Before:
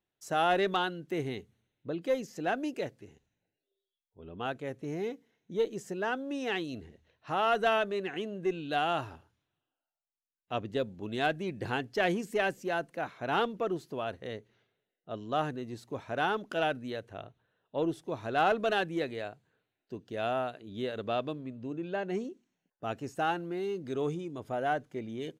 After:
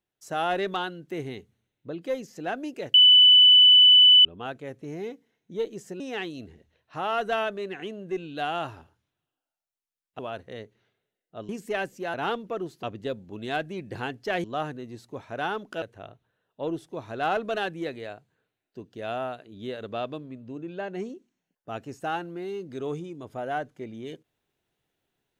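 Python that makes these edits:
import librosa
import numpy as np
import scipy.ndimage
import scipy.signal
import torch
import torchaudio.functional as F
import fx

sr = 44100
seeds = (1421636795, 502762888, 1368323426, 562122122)

y = fx.edit(x, sr, fx.bleep(start_s=2.94, length_s=1.31, hz=2990.0, db=-11.0),
    fx.cut(start_s=6.0, length_s=0.34),
    fx.swap(start_s=10.53, length_s=1.61, other_s=13.93, other_length_s=1.3),
    fx.cut(start_s=12.79, length_s=0.45),
    fx.cut(start_s=16.61, length_s=0.36), tone=tone)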